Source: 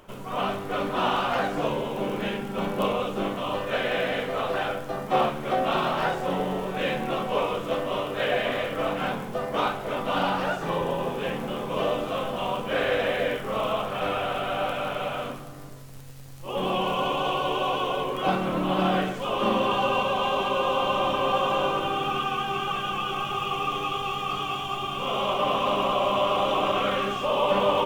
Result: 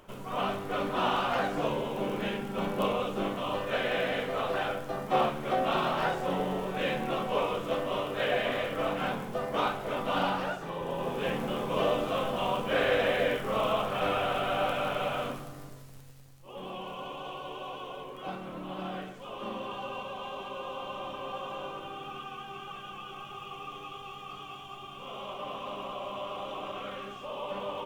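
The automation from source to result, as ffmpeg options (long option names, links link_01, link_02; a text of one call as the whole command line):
ffmpeg -i in.wav -af "volume=5.5dB,afade=type=out:start_time=10.24:duration=0.5:silence=0.446684,afade=type=in:start_time=10.74:duration=0.56:silence=0.354813,afade=type=out:start_time=15.39:duration=1.04:silence=0.237137" out.wav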